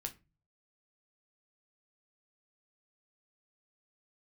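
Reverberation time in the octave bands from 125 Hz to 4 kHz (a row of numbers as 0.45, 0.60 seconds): 0.70, 0.45, 0.30, 0.25, 0.25, 0.20 seconds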